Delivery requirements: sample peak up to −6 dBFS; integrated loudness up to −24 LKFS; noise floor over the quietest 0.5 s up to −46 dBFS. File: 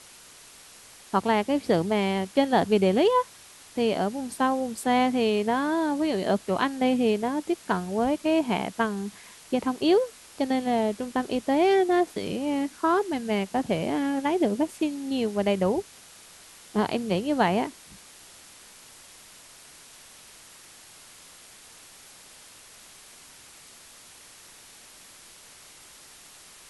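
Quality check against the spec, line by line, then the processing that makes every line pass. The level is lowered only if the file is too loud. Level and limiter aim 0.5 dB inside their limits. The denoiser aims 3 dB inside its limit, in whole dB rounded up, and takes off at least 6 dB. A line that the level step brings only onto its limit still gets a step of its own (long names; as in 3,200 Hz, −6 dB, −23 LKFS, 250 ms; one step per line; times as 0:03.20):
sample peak −9.5 dBFS: in spec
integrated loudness −25.5 LKFS: in spec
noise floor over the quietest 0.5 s −50 dBFS: in spec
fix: no processing needed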